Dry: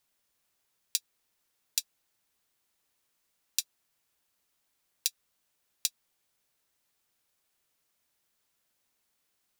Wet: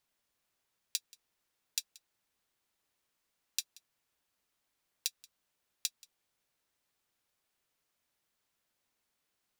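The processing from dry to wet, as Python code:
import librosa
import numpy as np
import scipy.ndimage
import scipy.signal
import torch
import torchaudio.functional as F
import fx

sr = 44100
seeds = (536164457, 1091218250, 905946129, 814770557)

p1 = fx.high_shelf(x, sr, hz=5600.0, db=-5.5)
p2 = p1 + fx.echo_single(p1, sr, ms=180, db=-23.0, dry=0)
y = F.gain(torch.from_numpy(p2), -2.0).numpy()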